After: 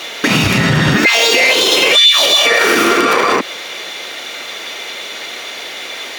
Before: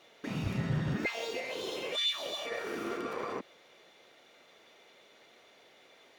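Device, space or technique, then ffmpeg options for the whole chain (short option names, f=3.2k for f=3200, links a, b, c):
mastering chain: -af "highpass=55,equalizer=f=290:t=o:w=1.1:g=4,acompressor=threshold=-36dB:ratio=2,tiltshelf=f=900:g=-7.5,asoftclip=type=hard:threshold=-22.5dB,alimiter=level_in=30.5dB:limit=-1dB:release=50:level=0:latency=1,volume=-1dB"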